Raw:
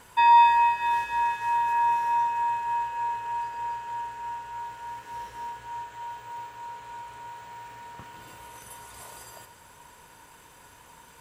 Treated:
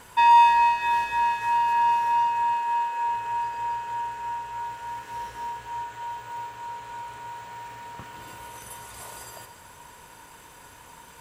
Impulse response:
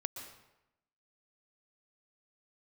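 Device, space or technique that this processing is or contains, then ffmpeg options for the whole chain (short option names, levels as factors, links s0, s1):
saturated reverb return: -filter_complex "[0:a]asettb=1/sr,asplit=3[s0][s1][s2];[s0]atrim=end=2.534[s3];[s1]atrim=start=2.53:end=3.08,asetpts=PTS-STARTPTS,afade=t=in:d=0.004:c=qsin,afade=t=out:st=0.546:d=0.004:c=qsin,highpass=230[s4];[s2]atrim=start=3.076[s5];[s3][s4]acrossfade=d=0.004:c1=hsin:c2=qsin[s6];[s6][s5]acrossfade=d=0.004:c1=qsin:c2=hsin,asplit=2[s7][s8];[1:a]atrim=start_sample=2205[s9];[s8][s9]afir=irnorm=-1:irlink=0,asoftclip=type=tanh:threshold=0.0398,volume=0.631[s10];[s7][s10]amix=inputs=2:normalize=0"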